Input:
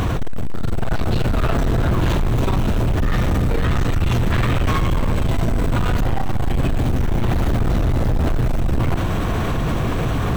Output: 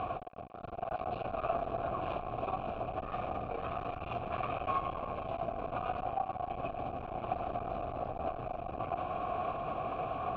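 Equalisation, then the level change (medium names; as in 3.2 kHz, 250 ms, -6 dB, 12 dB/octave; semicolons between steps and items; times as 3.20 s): vowel filter a; distance through air 230 m; bass shelf 82 Hz +12 dB; 0.0 dB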